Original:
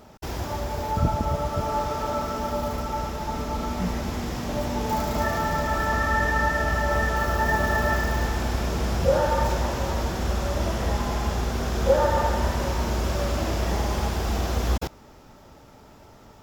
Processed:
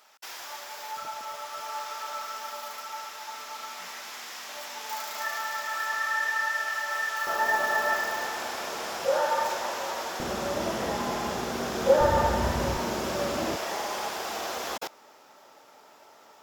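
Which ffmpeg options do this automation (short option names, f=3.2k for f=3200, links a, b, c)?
-af "asetnsamples=n=441:p=0,asendcmd='7.27 highpass f 630;10.2 highpass f 220;12.01 highpass f 81;12.77 highpass f 210;13.56 highpass f 570',highpass=1.4k"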